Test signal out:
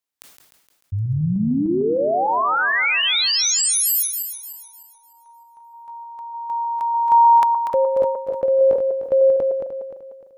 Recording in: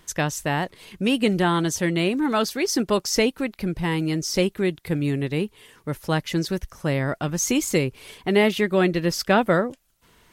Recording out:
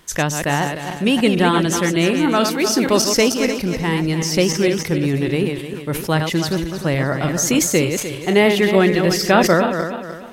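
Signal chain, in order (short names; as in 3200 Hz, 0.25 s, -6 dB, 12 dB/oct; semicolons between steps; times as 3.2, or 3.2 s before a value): regenerating reverse delay 0.151 s, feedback 58%, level -7 dB; low shelf 74 Hz -6 dB; sustainer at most 73 dB/s; gain +4.5 dB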